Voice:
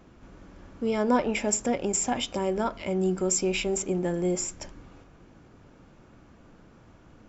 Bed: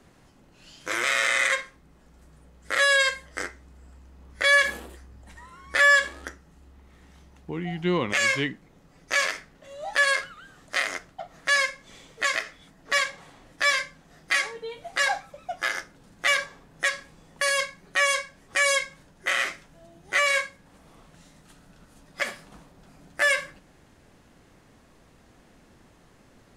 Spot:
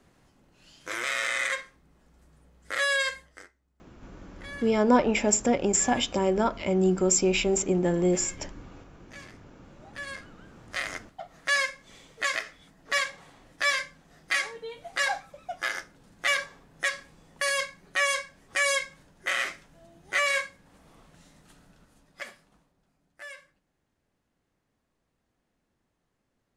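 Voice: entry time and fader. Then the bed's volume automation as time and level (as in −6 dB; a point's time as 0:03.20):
3.80 s, +3.0 dB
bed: 0:03.19 −5.5 dB
0:03.54 −23.5 dB
0:09.61 −23.5 dB
0:11.02 −3 dB
0:21.61 −3 dB
0:23.00 −21.5 dB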